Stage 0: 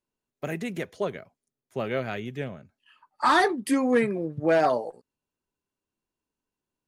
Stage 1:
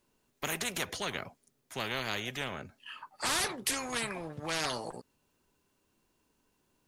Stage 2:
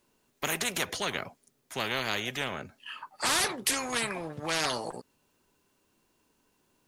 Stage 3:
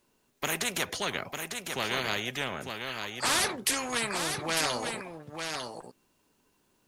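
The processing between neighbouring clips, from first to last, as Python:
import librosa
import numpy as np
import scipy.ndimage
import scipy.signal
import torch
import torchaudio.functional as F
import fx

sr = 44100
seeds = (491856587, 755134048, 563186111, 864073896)

y1 = fx.spectral_comp(x, sr, ratio=4.0)
y1 = y1 * librosa.db_to_amplitude(-4.0)
y2 = fx.low_shelf(y1, sr, hz=120.0, db=-5.5)
y2 = y2 * librosa.db_to_amplitude(4.0)
y3 = y2 + 10.0 ** (-6.0 / 20.0) * np.pad(y2, (int(900 * sr / 1000.0), 0))[:len(y2)]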